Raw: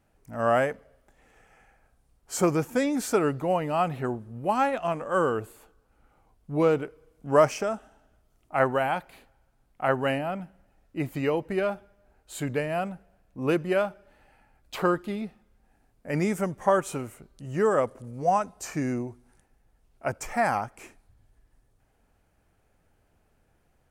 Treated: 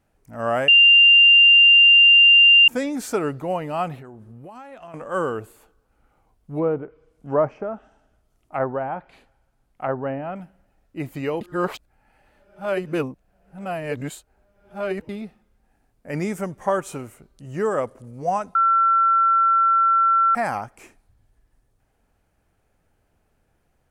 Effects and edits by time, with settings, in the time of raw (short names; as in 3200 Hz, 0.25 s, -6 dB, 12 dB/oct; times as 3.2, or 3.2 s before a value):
0.68–2.68 bleep 2790 Hz -8.5 dBFS
3.95–4.94 compressor 12:1, threshold -37 dBFS
6.58–10.36 treble ducked by the level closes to 1100 Hz, closed at -22.5 dBFS
11.41–15.09 reverse
18.55–20.35 bleep 1350 Hz -14 dBFS